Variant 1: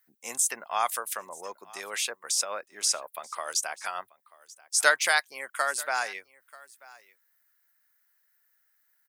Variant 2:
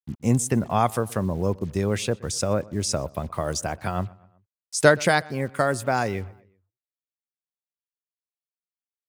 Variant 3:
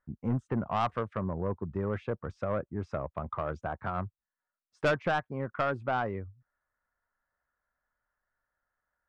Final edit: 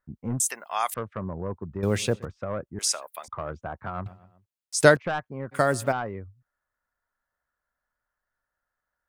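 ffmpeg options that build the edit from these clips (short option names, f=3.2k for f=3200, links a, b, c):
-filter_complex "[0:a]asplit=2[a][b];[1:a]asplit=3[c][d][e];[2:a]asplit=6[f][g][h][i][j][k];[f]atrim=end=0.402[l];[a]atrim=start=0.398:end=0.942[m];[g]atrim=start=0.938:end=1.832[n];[c]atrim=start=1.828:end=2.252[o];[h]atrim=start=2.248:end=2.792[p];[b]atrim=start=2.788:end=3.282[q];[i]atrim=start=3.278:end=4.062[r];[d]atrim=start=4.058:end=4.972[s];[j]atrim=start=4.968:end=5.53[t];[e]atrim=start=5.51:end=5.93[u];[k]atrim=start=5.91[v];[l][m]acrossfade=d=0.004:c1=hsin:c2=hsin[w];[w][n]acrossfade=d=0.004:c1=hsin:c2=hsin[x];[x][o]acrossfade=d=0.004:c1=hsin:c2=hsin[y];[y][p]acrossfade=d=0.004:c1=hsin:c2=hsin[z];[z][q]acrossfade=d=0.004:c1=hsin:c2=hsin[aa];[aa][r]acrossfade=d=0.004:c1=hsin:c2=hsin[ab];[ab][s]acrossfade=d=0.004:c1=hsin:c2=hsin[ac];[ac][t]acrossfade=d=0.004:c1=hsin:c2=hsin[ad];[ad][u]acrossfade=d=0.02:c1=tri:c2=tri[ae];[ae][v]acrossfade=d=0.02:c1=tri:c2=tri"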